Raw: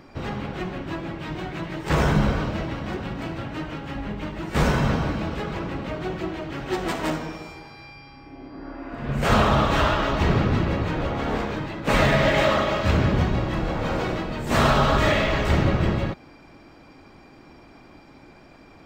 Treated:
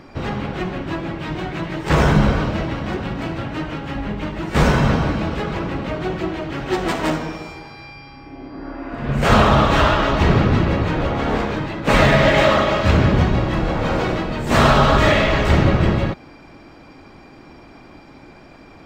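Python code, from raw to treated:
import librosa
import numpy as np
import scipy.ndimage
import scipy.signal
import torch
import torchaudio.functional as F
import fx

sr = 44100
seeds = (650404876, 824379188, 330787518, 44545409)

y = fx.high_shelf(x, sr, hz=10000.0, db=-5.5)
y = F.gain(torch.from_numpy(y), 5.5).numpy()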